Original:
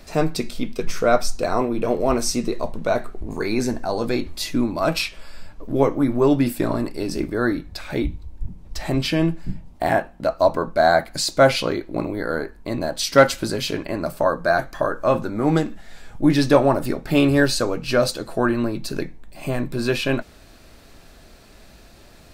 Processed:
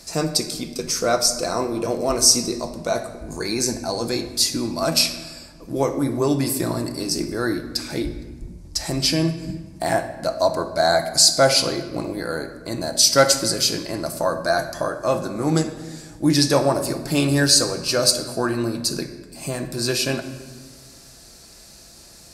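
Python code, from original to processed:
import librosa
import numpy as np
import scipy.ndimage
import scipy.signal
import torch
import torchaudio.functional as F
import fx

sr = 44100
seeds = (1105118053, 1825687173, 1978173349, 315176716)

y = scipy.signal.sosfilt(scipy.signal.butter(2, 42.0, 'highpass', fs=sr, output='sos'), x)
y = fx.band_shelf(y, sr, hz=7200.0, db=14.5, octaves=1.7)
y = fx.room_shoebox(y, sr, seeds[0], volume_m3=1400.0, walls='mixed', distance_m=0.75)
y = F.gain(torch.from_numpy(y), -3.0).numpy()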